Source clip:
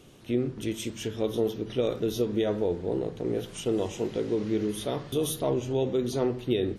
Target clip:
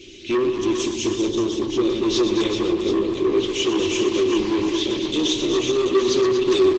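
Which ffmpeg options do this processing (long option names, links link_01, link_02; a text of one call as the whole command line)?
ffmpeg -i in.wav -filter_complex "[0:a]asplit=3[link_01][link_02][link_03];[link_01]afade=type=out:start_time=0.58:duration=0.02[link_04];[link_02]equalizer=frequency=2500:width_type=o:width=1.4:gain=-11,afade=type=in:start_time=0.58:duration=0.02,afade=type=out:start_time=1.92:duration=0.02[link_05];[link_03]afade=type=in:start_time=1.92:duration=0.02[link_06];[link_04][link_05][link_06]amix=inputs=3:normalize=0,aecho=1:1:3.4:0.7,asettb=1/sr,asplit=3[link_07][link_08][link_09];[link_07]atrim=end=2.474[link_10];[link_08]atrim=start=2.47:end=3.04,asetpts=PTS-STARTPTS,afade=type=in:duration=0.004:curve=qsin,afade=type=out:start_time=0.566:duration=0.004:curve=qsin,bandreject=frequency=189.6:width_type=h:width=4,bandreject=frequency=379.2:width_type=h:width=4,bandreject=frequency=568.8:width_type=h:width=4,bandreject=frequency=758.4:width_type=h:width=4,bandreject=frequency=948:width_type=h:width=4,bandreject=frequency=1137.6:width_type=h:width=4,bandreject=frequency=1327.2:width_type=h:width=4,bandreject=frequency=1516.8:width_type=h:width=4,bandreject=frequency=1706.4:width_type=h:width=4,bandreject=frequency=1896:width_type=h:width=4,bandreject=frequency=2085.6:width_type=h:width=4,bandreject=frequency=2275.2:width_type=h:width=4,bandreject=frequency=2464.8:width_type=h:width=4,bandreject=frequency=2654.4:width_type=h:width=4,bandreject=frequency=2844:width_type=h:width=4,bandreject=frequency=3033.6:width_type=h:width=4,bandreject=frequency=3223.2:width_type=h:width=4,bandreject=frequency=3412.8:width_type=h:width=4,bandreject=frequency=3602.4:width_type=h:width=4,bandreject=frequency=3792:width_type=h:width=4,bandreject=frequency=3981.6:width_type=h:width=4,bandreject=frequency=4171.2:width_type=h:width=4,bandreject=frequency=4360.8:width_type=h:width=4,bandreject=frequency=4550.4:width_type=h:width=4,bandreject=frequency=4740:width_type=h:width=4,bandreject=frequency=4929.6:width_type=h:width=4,bandreject=frequency=5119.2:width_type=h:width=4[link_11];[link_09]atrim=start=3.036[link_12];[link_10][link_11]acrossfade=duration=0.004:curve1=hsin:curve2=qsin[link_13];[link_13][link_12]acrossfade=duration=0.004:curve1=qsin:curve2=hsin,asettb=1/sr,asplit=3[link_14][link_15][link_16];[link_14]atrim=end=4.694[link_17];[link_15]atrim=start=4.69:end=5.13,asetpts=PTS-STARTPTS,afade=type=in:duration=0.004:curve=qsin,afade=type=out:start_time=0.436:duration=0.004:curve=qsin,acompressor=threshold=-30dB:ratio=2[link_18];[link_16]atrim=start=5.126[link_19];[link_17][link_18]acrossfade=duration=0.004:curve1=hsin:curve2=qsin[link_20];[link_20][link_19]acrossfade=duration=0.004:curve1=qsin:curve2=hsin,firequalizer=gain_entry='entry(140,0);entry(260,-3);entry(380,12);entry(710,-28);entry(2300,13);entry(6800,7);entry(13000,-20)':delay=0.05:min_phase=1,asoftclip=type=tanh:threshold=-22dB,acontrast=29,aecho=1:1:61|122|233|398|521|733:0.15|0.335|0.398|0.422|0.106|0.282" -ar 48000 -c:a libopus -b:a 12k out.opus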